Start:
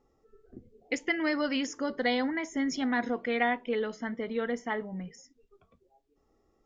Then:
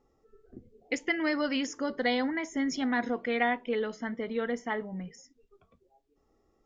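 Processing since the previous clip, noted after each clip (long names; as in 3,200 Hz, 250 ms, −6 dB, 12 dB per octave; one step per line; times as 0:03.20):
no processing that can be heard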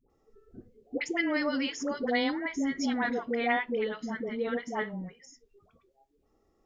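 all-pass dispersion highs, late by 99 ms, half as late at 660 Hz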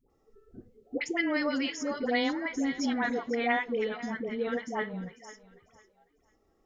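feedback echo with a high-pass in the loop 498 ms, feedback 28%, high-pass 380 Hz, level −15.5 dB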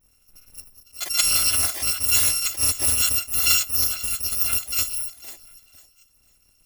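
samples in bit-reversed order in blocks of 256 samples
level that may rise only so fast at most 220 dB per second
level +9 dB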